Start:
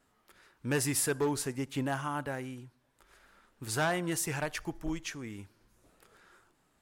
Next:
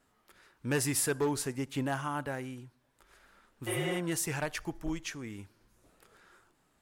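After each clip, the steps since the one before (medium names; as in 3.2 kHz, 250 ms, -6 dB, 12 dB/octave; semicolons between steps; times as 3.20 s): spectral replace 3.70–3.93 s, 220–8300 Hz after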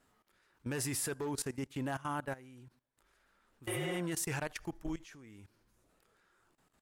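level held to a coarse grid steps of 18 dB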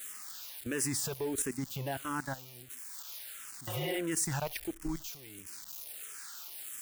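zero-crossing glitches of -36.5 dBFS; barber-pole phaser -1.5 Hz; trim +4.5 dB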